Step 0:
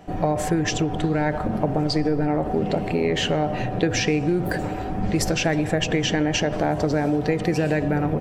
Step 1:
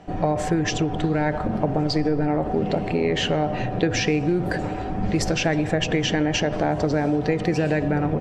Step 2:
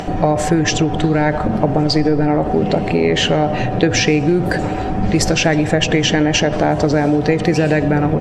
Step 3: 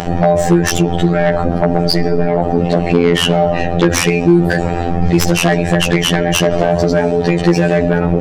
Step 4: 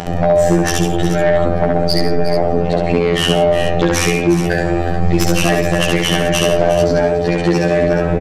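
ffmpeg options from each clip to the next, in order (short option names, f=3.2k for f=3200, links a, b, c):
-af "lowpass=7k"
-af "highshelf=f=5.1k:g=4.5,acompressor=mode=upward:threshold=-23dB:ratio=2.5,volume=7dB"
-af "afftfilt=real='hypot(re,im)*cos(PI*b)':imag='0':win_size=2048:overlap=0.75,aeval=exprs='1.5*sin(PI/2*2.82*val(0)/1.5)':c=same,volume=-5dB"
-filter_complex "[0:a]asplit=2[a][b];[b]aecho=0:1:68|136|169|360|427:0.708|0.211|0.168|0.224|0.266[c];[a][c]amix=inputs=2:normalize=0,aresample=32000,aresample=44100,volume=-3.5dB"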